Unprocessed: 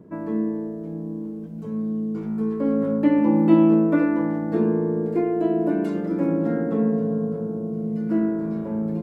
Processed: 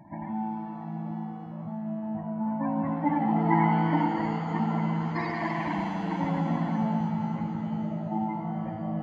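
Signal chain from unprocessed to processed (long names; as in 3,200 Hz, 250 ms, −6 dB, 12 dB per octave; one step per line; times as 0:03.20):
each half-wave held at its own peak
high-pass filter 57 Hz
phaser with its sweep stopped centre 2,000 Hz, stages 8
gate on every frequency bin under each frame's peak −15 dB strong
echo ahead of the sound 145 ms −16 dB
reverb with rising layers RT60 3.3 s, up +7 semitones, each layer −8 dB, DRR 4.5 dB
level −4.5 dB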